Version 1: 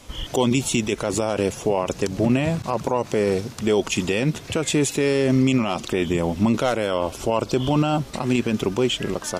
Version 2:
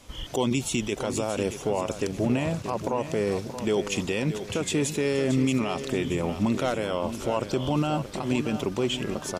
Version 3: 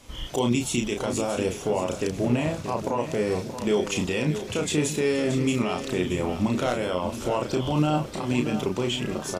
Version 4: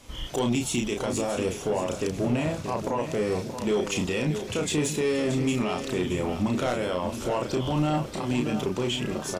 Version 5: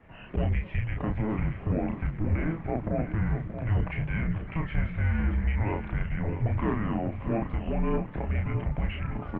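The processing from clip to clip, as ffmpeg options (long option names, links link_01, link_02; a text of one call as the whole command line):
ffmpeg -i in.wav -af "aecho=1:1:628|1256|1884|2512:0.299|0.125|0.0527|0.0221,volume=-5.5dB" out.wav
ffmpeg -i in.wav -filter_complex "[0:a]asplit=2[link_01][link_02];[link_02]adelay=33,volume=-4.5dB[link_03];[link_01][link_03]amix=inputs=2:normalize=0" out.wav
ffmpeg -i in.wav -af "asoftclip=type=tanh:threshold=-17dB" out.wav
ffmpeg -i in.wav -af "highpass=frequency=160:width_type=q:width=0.5412,highpass=frequency=160:width_type=q:width=1.307,lowpass=frequency=2500:width_type=q:width=0.5176,lowpass=frequency=2500:width_type=q:width=0.7071,lowpass=frequency=2500:width_type=q:width=1.932,afreqshift=-330" -ar 48000 -c:a libopus -b:a 24k out.opus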